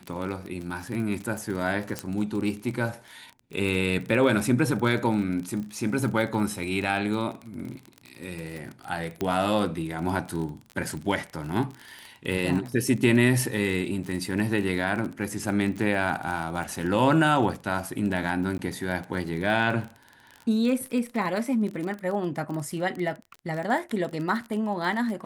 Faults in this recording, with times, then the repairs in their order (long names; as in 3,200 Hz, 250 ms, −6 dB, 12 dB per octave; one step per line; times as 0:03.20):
surface crackle 29 per second −31 dBFS
0:01.99: click −13 dBFS
0:09.21: click −15 dBFS
0:18.58–0:18.59: drop-out 11 ms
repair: click removal
repair the gap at 0:18.58, 11 ms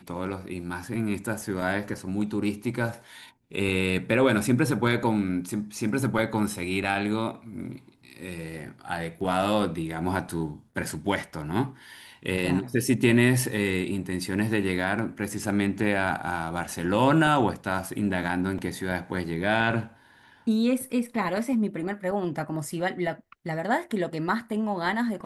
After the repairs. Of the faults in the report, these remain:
0:01.99: click
0:09.21: click